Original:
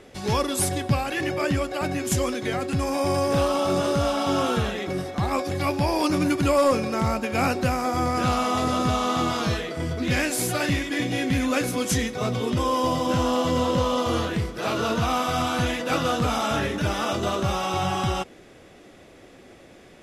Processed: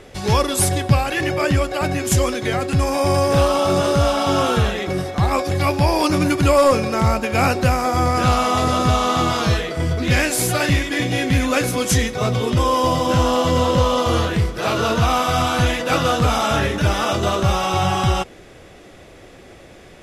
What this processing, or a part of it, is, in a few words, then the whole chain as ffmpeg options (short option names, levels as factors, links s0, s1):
low shelf boost with a cut just above: -af "lowshelf=f=100:g=6.5,equalizer=f=250:t=o:w=0.86:g=-4.5,volume=2"